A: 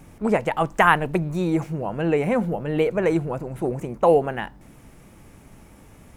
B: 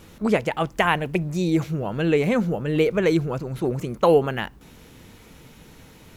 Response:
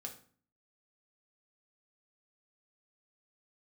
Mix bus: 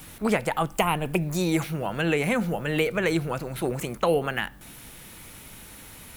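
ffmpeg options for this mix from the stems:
-filter_complex "[0:a]aexciter=amount=5.7:drive=6.6:freq=8.1k,volume=-1.5dB[a];[1:a]highpass=1.1k,volume=2.5dB,asplit=2[b][c];[c]volume=-7.5dB[d];[2:a]atrim=start_sample=2205[e];[d][e]afir=irnorm=-1:irlink=0[f];[a][b][f]amix=inputs=3:normalize=0,acrossover=split=380[g][h];[h]acompressor=threshold=-26dB:ratio=2.5[i];[g][i]amix=inputs=2:normalize=0"

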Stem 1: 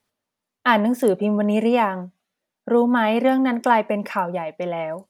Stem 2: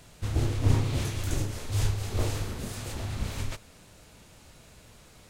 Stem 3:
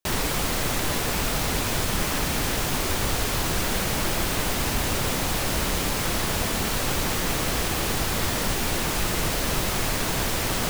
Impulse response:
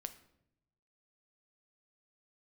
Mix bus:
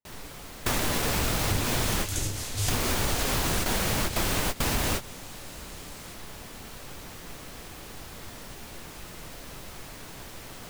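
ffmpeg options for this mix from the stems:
-filter_complex "[0:a]lowpass=3k,volume=-20dB,asplit=2[a][b];[1:a]highshelf=f=2.3k:g=12,adelay=850,volume=-2dB[c];[2:a]volume=2.5dB,asplit=2[d][e];[e]volume=-19.5dB[f];[b]apad=whole_len=471681[g];[d][g]sidechaingate=range=-31dB:threshold=-49dB:ratio=16:detection=peak[h];[3:a]atrim=start_sample=2205[i];[f][i]afir=irnorm=-1:irlink=0[j];[a][c][h][j]amix=inputs=4:normalize=0,acompressor=threshold=-23dB:ratio=5"

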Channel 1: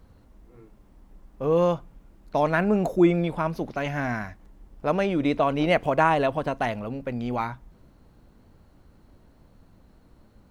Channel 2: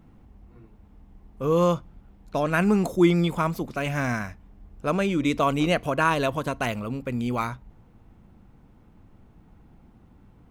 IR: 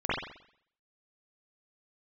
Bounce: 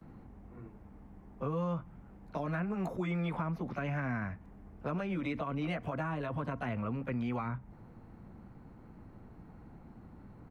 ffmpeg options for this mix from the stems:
-filter_complex "[0:a]volume=-11dB,asplit=2[a][b];[1:a]lowpass=f=2.2k:w=0.5412,lowpass=f=2.2k:w=1.3066,volume=-1,adelay=14,volume=2.5dB[c];[b]apad=whole_len=463920[d];[c][d]sidechaincompress=threshold=-40dB:ratio=8:attack=39:release=103[e];[a][e]amix=inputs=2:normalize=0,acrossover=split=84|270|620[f][g][h][i];[f]acompressor=threshold=-58dB:ratio=4[j];[g]acompressor=threshold=-35dB:ratio=4[k];[h]acompressor=threshold=-51dB:ratio=4[l];[i]acompressor=threshold=-39dB:ratio=4[m];[j][k][l][m]amix=inputs=4:normalize=0"

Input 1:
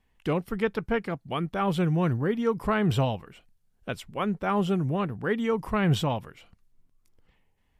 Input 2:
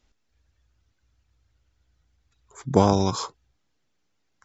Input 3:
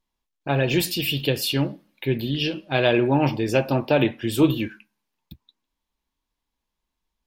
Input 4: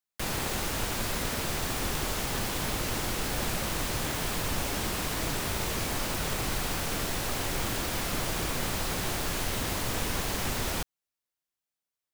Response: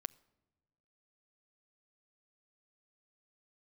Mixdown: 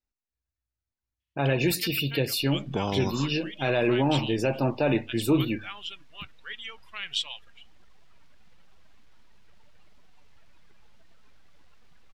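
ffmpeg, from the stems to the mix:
-filter_complex "[0:a]crystalizer=i=9:c=0,bandpass=f=3.2k:t=q:w=1.8:csg=0,adelay=1200,volume=-6dB[a];[1:a]volume=-6.5dB[b];[2:a]bandreject=f=50:t=h:w=6,bandreject=f=100:t=h:w=6,adelay=900,volume=-4dB,asplit=2[c][d];[d]volume=-10dB[e];[3:a]acrossover=split=530 3800:gain=0.2 1 0.0708[f][g][h];[f][g][h]amix=inputs=3:normalize=0,aeval=exprs='abs(val(0))':c=same,adelay=2200,volume=-14dB,asplit=2[i][j];[j]volume=-5.5dB[k];[b][c]amix=inputs=2:normalize=0,asuperstop=centerf=3200:order=4:qfactor=6.3,alimiter=limit=-16.5dB:level=0:latency=1:release=16,volume=0dB[l];[4:a]atrim=start_sample=2205[m];[e][k]amix=inputs=2:normalize=0[n];[n][m]afir=irnorm=-1:irlink=0[o];[a][i][l][o]amix=inputs=4:normalize=0,afftdn=nr=16:nf=-44"

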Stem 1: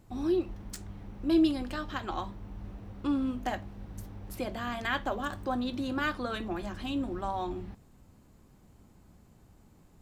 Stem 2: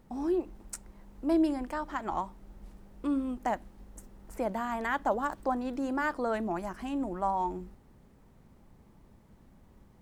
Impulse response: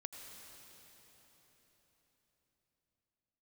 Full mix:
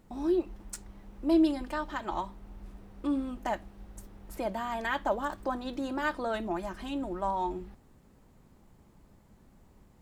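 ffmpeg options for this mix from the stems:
-filter_complex "[0:a]equalizer=f=110:t=o:w=1.8:g=-12.5,volume=-5dB[a];[1:a]volume=-1.5dB[b];[a][b]amix=inputs=2:normalize=0"

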